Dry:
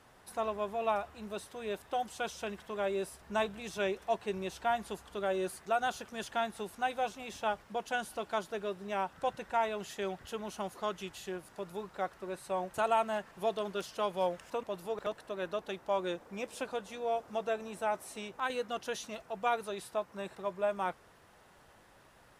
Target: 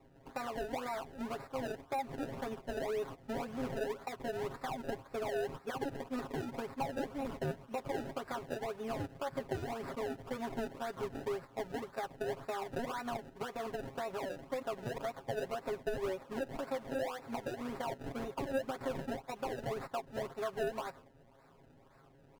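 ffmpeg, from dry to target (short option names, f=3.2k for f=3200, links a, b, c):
-af "agate=range=-8dB:threshold=-47dB:ratio=16:detection=peak,alimiter=level_in=5.5dB:limit=-24dB:level=0:latency=1:release=93,volume=-5.5dB,acompressor=threshold=-41dB:ratio=6,acrusher=samples=30:mix=1:aa=0.000001:lfo=1:lforange=30:lforate=1.9,asetrate=48091,aresample=44100,atempo=0.917004,highshelf=f=2.4k:g=-11,aecho=1:1:7.4:0.82,volume=5.5dB"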